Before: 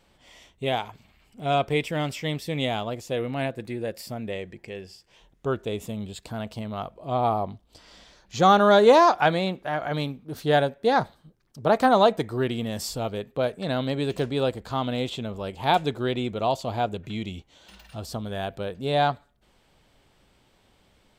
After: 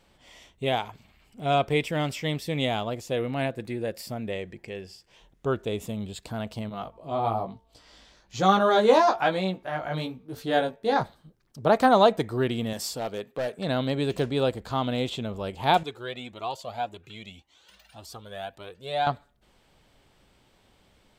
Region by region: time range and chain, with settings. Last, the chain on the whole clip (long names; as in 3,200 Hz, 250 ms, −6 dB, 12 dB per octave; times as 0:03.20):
0:06.69–0:11.01: hum removal 225.3 Hz, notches 5 + chorus effect 1.1 Hz, delay 15.5 ms, depth 3.6 ms
0:12.73–0:13.59: high-pass filter 280 Hz 6 dB per octave + gain into a clipping stage and back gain 24.5 dB
0:15.83–0:19.07: high-pass filter 42 Hz + low-shelf EQ 350 Hz −11 dB + flanger whose copies keep moving one way rising 1.8 Hz
whole clip: no processing